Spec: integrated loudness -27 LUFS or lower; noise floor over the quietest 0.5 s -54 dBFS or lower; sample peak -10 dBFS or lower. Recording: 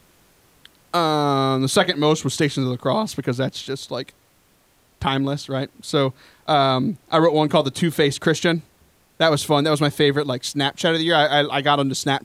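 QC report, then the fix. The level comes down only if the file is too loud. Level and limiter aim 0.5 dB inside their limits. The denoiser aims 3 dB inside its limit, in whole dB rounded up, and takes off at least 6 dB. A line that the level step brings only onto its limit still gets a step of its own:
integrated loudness -20.0 LUFS: fail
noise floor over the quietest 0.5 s -59 dBFS: OK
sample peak -4.0 dBFS: fail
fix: gain -7.5 dB

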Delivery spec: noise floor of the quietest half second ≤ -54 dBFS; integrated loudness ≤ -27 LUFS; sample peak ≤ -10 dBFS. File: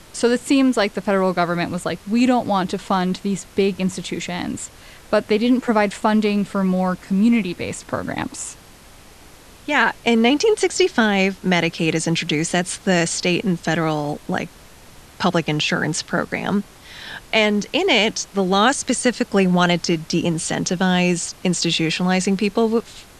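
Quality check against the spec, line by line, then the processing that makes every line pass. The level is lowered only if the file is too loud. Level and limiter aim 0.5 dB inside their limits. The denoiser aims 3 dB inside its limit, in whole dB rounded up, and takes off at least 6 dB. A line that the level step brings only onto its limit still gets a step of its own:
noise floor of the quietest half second -45 dBFS: fail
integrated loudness -19.5 LUFS: fail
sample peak -2.5 dBFS: fail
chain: denoiser 6 dB, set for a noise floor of -45 dBFS; gain -8 dB

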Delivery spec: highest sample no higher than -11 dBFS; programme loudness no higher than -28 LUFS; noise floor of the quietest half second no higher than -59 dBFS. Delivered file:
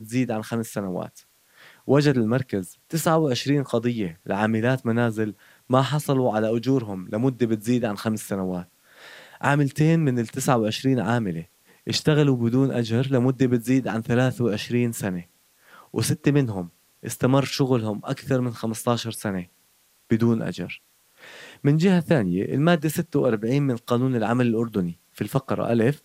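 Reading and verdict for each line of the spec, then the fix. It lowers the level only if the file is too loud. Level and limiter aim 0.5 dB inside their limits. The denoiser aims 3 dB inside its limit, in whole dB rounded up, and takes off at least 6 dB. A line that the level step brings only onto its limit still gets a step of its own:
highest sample -5.0 dBFS: fail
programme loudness -23.5 LUFS: fail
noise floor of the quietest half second -62 dBFS: OK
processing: gain -5 dB; limiter -11.5 dBFS

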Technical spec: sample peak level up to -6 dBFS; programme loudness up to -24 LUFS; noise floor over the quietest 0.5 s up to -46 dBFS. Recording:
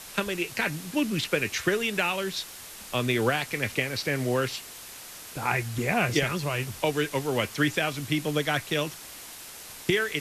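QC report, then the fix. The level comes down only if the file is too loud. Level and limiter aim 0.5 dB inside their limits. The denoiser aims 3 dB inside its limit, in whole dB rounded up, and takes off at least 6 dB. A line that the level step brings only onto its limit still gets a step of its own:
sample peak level -10.5 dBFS: OK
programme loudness -27.5 LUFS: OK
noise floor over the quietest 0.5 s -44 dBFS: fail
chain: denoiser 6 dB, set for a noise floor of -44 dBFS

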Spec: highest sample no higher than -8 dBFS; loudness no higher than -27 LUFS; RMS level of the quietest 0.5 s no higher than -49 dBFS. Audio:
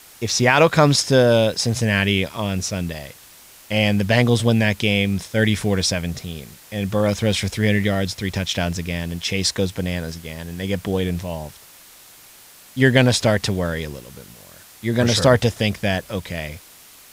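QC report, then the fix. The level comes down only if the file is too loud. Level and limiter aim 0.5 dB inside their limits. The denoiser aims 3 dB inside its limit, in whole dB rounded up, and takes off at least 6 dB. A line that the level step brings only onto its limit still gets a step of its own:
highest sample -2.5 dBFS: fail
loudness -19.5 LUFS: fail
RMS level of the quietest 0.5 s -46 dBFS: fail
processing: gain -8 dB

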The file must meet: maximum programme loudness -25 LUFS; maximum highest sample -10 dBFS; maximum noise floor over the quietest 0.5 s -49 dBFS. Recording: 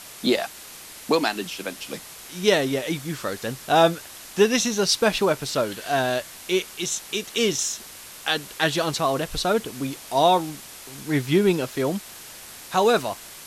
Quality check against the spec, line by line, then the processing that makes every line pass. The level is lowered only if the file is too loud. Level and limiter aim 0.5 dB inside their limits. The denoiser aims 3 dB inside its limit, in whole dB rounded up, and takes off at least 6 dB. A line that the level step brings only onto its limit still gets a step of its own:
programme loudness -23.5 LUFS: fail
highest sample -5.5 dBFS: fail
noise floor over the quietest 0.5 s -42 dBFS: fail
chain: denoiser 8 dB, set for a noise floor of -42 dBFS; gain -2 dB; limiter -10.5 dBFS

